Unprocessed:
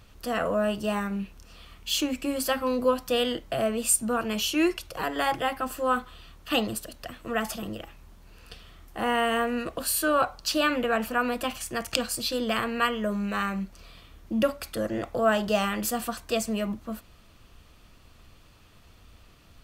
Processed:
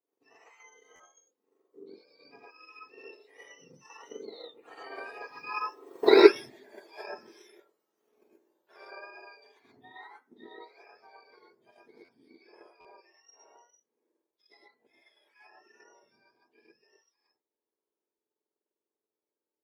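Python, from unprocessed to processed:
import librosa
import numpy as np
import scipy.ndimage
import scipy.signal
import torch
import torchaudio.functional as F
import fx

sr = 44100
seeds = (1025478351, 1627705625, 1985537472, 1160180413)

y = fx.octave_mirror(x, sr, pivot_hz=1100.0)
y = fx.doppler_pass(y, sr, speed_mps=23, closest_m=1.3, pass_at_s=6.06)
y = scipy.signal.sosfilt(scipy.signal.butter(4, 370.0, 'highpass', fs=sr, output='sos'), y)
y = fx.tilt_eq(y, sr, slope=-2.0)
y = fx.rev_gated(y, sr, seeds[0], gate_ms=150, shape='rising', drr_db=-6.0)
y = fx.transient(y, sr, attack_db=6, sustain_db=-2)
y = fx.buffer_glitch(y, sr, at_s=(0.95, 12.04, 12.8), block=512, repeats=3)
y = y * librosa.db_to_amplitude(6.0)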